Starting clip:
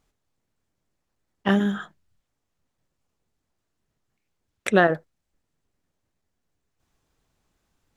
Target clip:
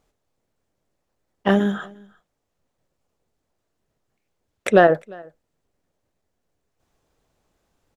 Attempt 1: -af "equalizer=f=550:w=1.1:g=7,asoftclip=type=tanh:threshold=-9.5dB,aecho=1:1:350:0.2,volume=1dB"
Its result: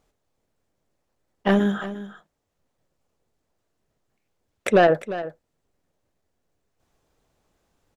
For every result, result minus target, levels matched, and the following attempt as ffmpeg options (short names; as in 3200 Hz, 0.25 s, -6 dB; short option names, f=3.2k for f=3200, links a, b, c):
soft clip: distortion +12 dB; echo-to-direct +11.5 dB
-af "equalizer=f=550:w=1.1:g=7,asoftclip=type=tanh:threshold=-0.5dB,aecho=1:1:350:0.2,volume=1dB"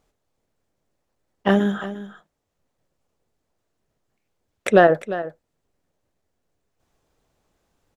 echo-to-direct +11.5 dB
-af "equalizer=f=550:w=1.1:g=7,asoftclip=type=tanh:threshold=-0.5dB,aecho=1:1:350:0.0531,volume=1dB"